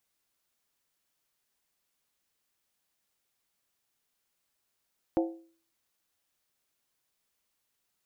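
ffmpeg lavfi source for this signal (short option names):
-f lavfi -i "aevalsrc='0.0841*pow(10,-3*t/0.46)*sin(2*PI*331*t)+0.0473*pow(10,-3*t/0.364)*sin(2*PI*527.6*t)+0.0266*pow(10,-3*t/0.315)*sin(2*PI*707*t)+0.015*pow(10,-3*t/0.304)*sin(2*PI*760*t)+0.00841*pow(10,-3*t/0.282)*sin(2*PI*878.1*t)':d=0.63:s=44100"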